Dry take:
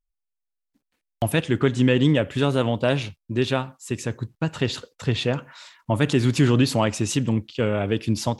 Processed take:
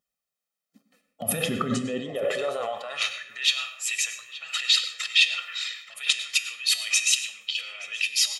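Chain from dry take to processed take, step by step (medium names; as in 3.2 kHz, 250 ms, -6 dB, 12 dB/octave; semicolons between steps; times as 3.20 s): coarse spectral quantiser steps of 15 dB; comb 1.6 ms, depth 84%; compressor with a negative ratio -28 dBFS, ratio -1; feedback comb 56 Hz, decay 0.56 s, harmonics odd, mix 60%; echo from a far wall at 150 m, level -10 dB; on a send at -11 dB: reverberation RT60 0.50 s, pre-delay 93 ms; on the sum: high-pass sweep 230 Hz -> 2.5 kHz, 1.81–3.55 s; trim +7.5 dB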